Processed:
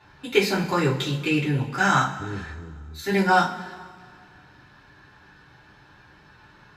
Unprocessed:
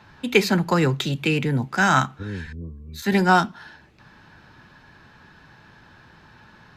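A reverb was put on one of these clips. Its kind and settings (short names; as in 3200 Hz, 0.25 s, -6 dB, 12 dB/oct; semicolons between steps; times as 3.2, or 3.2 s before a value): two-slope reverb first 0.27 s, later 1.9 s, from -18 dB, DRR -5.5 dB; gain -8 dB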